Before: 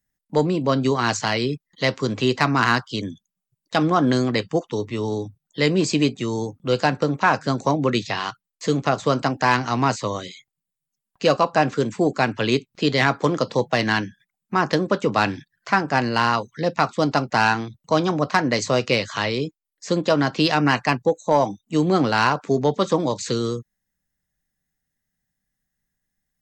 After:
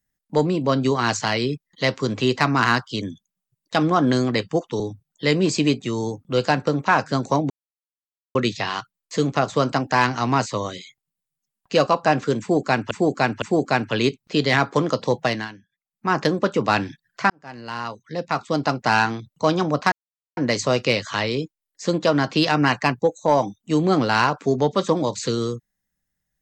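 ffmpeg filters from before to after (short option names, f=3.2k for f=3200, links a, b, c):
-filter_complex "[0:a]asplit=9[a][b][c][d][e][f][g][h][i];[a]atrim=end=4.802[j];[b]atrim=start=5.148:end=7.85,asetpts=PTS-STARTPTS,afade=t=out:st=2.698:d=0.004:c=hsin,apad=pad_dur=0.85[k];[c]atrim=start=7.85:end=12.412,asetpts=PTS-STARTPTS,afade=t=in:d=0.004:c=hsin[l];[d]atrim=start=11.898:end=12.412[m];[e]atrim=start=11.898:end=13.97,asetpts=PTS-STARTPTS,afade=t=out:st=1.822:d=0.25:silence=0.158489[n];[f]atrim=start=13.97:end=14.36,asetpts=PTS-STARTPTS,volume=-16dB[o];[g]atrim=start=14.36:end=15.78,asetpts=PTS-STARTPTS,afade=t=in:d=0.25:silence=0.158489,afade=t=out:st=1.416:d=0.004:c=hsin[p];[h]atrim=start=15.78:end=18.4,asetpts=PTS-STARTPTS,afade=t=in:d=1.6,afade=t=out:st=2.616:d=0.004:c=hsin,apad=pad_dur=0.45[q];[i]atrim=start=18.4,asetpts=PTS-STARTPTS,afade=t=in:d=0.004:c=hsin[r];[k][l]concat=n=2:v=0:a=1[s];[j][s]acrossfade=d=0.004:c1=hsin:c2=hsin[t];[t][m]acrossfade=d=0.004:c1=hsin:c2=hsin[u];[n][o][p][q][r]concat=n=5:v=0:a=1[v];[u][v]acrossfade=d=0.004:c1=hsin:c2=hsin"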